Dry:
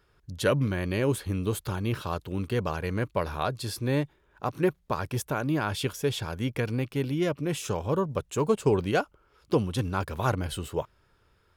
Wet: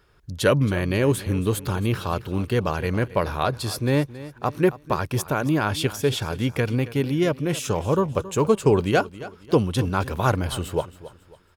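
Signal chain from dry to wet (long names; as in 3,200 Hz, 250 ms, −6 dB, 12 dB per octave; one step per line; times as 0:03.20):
repeating echo 273 ms, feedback 35%, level −16.5 dB
level +5.5 dB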